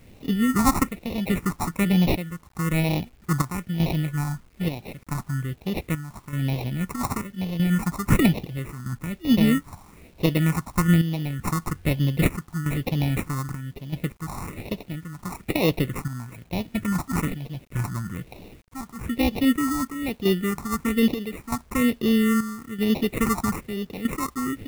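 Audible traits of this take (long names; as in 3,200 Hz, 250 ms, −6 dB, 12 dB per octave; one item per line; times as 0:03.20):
chopped level 0.79 Hz, depth 65%, duty 70%
aliases and images of a low sample rate 1,600 Hz, jitter 0%
phaser sweep stages 4, 1.1 Hz, lowest notch 480–1,400 Hz
a quantiser's noise floor 10 bits, dither none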